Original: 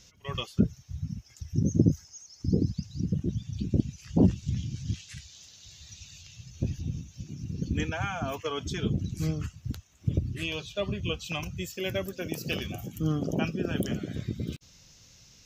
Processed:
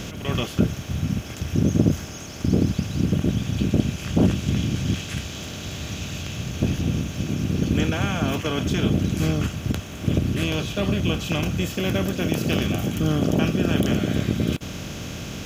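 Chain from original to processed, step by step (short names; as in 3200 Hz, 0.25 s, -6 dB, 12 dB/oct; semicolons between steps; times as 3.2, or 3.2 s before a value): per-bin compression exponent 0.4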